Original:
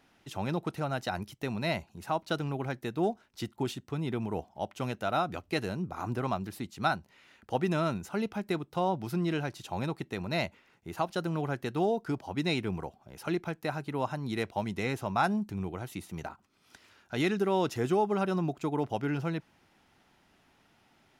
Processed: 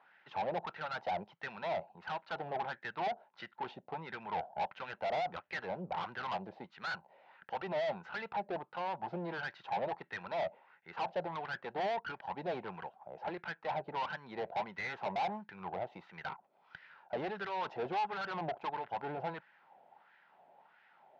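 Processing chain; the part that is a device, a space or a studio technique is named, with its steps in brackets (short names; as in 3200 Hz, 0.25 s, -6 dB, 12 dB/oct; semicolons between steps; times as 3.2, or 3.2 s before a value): wah-wah guitar rig (wah 1.5 Hz 640–1700 Hz, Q 3.6; tube stage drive 47 dB, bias 0.55; speaker cabinet 110–4400 Hz, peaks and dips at 170 Hz +6 dB, 290 Hz -7 dB, 540 Hz +5 dB, 850 Hz +5 dB, 1200 Hz -6 dB); gain +12.5 dB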